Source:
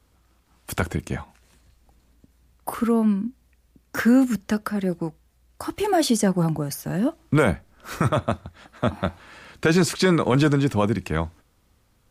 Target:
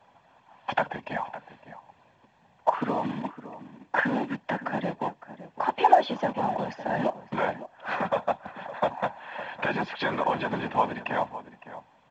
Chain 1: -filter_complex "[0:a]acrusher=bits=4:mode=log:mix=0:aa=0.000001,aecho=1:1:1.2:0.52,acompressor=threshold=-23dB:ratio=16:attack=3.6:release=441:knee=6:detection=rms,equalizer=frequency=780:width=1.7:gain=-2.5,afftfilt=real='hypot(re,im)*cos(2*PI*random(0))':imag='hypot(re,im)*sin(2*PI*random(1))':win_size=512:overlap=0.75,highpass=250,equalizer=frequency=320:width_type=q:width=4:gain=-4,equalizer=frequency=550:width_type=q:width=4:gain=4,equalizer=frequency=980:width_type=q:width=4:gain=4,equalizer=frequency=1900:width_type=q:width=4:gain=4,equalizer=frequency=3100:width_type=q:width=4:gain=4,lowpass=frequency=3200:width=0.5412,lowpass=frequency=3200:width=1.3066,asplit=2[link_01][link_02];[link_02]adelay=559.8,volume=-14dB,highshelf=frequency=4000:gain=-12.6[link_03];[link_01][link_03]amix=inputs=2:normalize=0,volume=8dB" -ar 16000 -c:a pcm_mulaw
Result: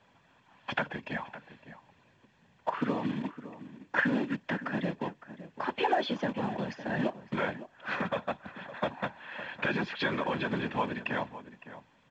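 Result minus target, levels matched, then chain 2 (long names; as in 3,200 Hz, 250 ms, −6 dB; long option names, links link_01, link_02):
1,000 Hz band −4.5 dB
-filter_complex "[0:a]acrusher=bits=4:mode=log:mix=0:aa=0.000001,aecho=1:1:1.2:0.52,acompressor=threshold=-23dB:ratio=16:attack=3.6:release=441:knee=6:detection=rms,equalizer=frequency=780:width=1.7:gain=9,afftfilt=real='hypot(re,im)*cos(2*PI*random(0))':imag='hypot(re,im)*sin(2*PI*random(1))':win_size=512:overlap=0.75,highpass=250,equalizer=frequency=320:width_type=q:width=4:gain=-4,equalizer=frequency=550:width_type=q:width=4:gain=4,equalizer=frequency=980:width_type=q:width=4:gain=4,equalizer=frequency=1900:width_type=q:width=4:gain=4,equalizer=frequency=3100:width_type=q:width=4:gain=4,lowpass=frequency=3200:width=0.5412,lowpass=frequency=3200:width=1.3066,asplit=2[link_01][link_02];[link_02]adelay=559.8,volume=-14dB,highshelf=frequency=4000:gain=-12.6[link_03];[link_01][link_03]amix=inputs=2:normalize=0,volume=8dB" -ar 16000 -c:a pcm_mulaw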